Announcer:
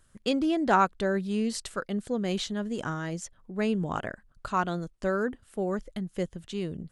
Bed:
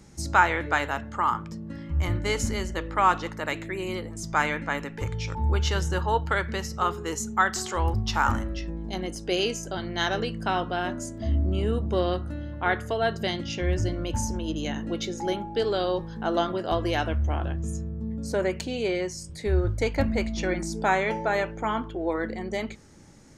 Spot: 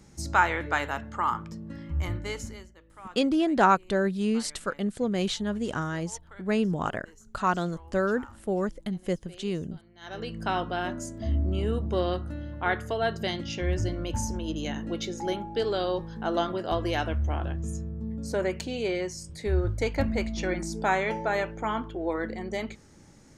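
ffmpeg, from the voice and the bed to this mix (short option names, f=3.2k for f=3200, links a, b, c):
-filter_complex "[0:a]adelay=2900,volume=2dB[a];[1:a]volume=20dB,afade=t=out:st=1.9:d=0.83:silence=0.0794328,afade=t=in:st=10.01:d=0.42:silence=0.0749894[b];[a][b]amix=inputs=2:normalize=0"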